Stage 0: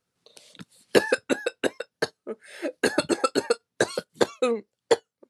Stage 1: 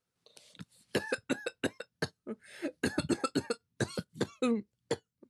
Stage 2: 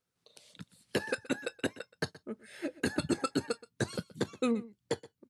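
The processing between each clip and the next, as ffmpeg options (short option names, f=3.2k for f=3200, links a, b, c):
-af "asubboost=boost=10:cutoff=180,alimiter=limit=-11.5dB:level=0:latency=1:release=212,volume=-6.5dB"
-af "aecho=1:1:124:0.106"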